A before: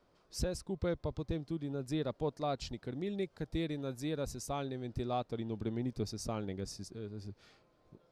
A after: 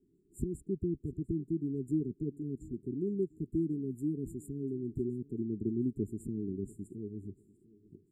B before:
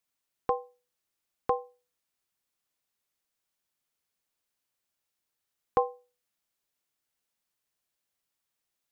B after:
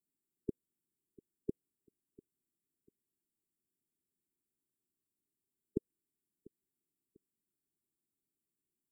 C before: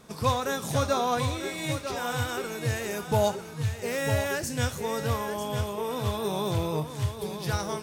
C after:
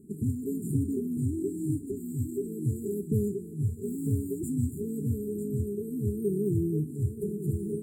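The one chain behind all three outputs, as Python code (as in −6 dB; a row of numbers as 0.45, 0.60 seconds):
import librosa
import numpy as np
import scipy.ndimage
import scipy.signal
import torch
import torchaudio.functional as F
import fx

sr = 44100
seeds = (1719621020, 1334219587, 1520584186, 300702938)

y = fx.brickwall_bandstop(x, sr, low_hz=430.0, high_hz=7000.0)
y = fx.peak_eq(y, sr, hz=290.0, db=12.0, octaves=2.9)
y = fx.echo_feedback(y, sr, ms=695, feedback_pct=32, wet_db=-22.0)
y = y * 10.0 ** (-6.5 / 20.0)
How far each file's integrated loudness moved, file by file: +2.0, −11.5, −2.0 LU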